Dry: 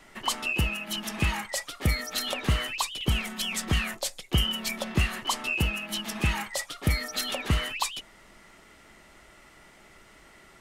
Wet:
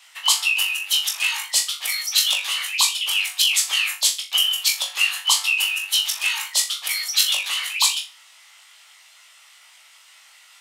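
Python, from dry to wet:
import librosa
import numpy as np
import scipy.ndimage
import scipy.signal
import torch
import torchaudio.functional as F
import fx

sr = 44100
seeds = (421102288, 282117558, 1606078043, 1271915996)

p1 = fx.high_shelf_res(x, sr, hz=2300.0, db=7.5, q=1.5)
p2 = fx.hpss(p1, sr, part='harmonic', gain_db=-11)
p3 = scipy.signal.sosfilt(scipy.signal.butter(4, 900.0, 'highpass', fs=sr, output='sos'), p2)
p4 = p3 + fx.room_flutter(p3, sr, wall_m=3.5, rt60_s=0.29, dry=0)
y = p4 * librosa.db_to_amplitude(4.0)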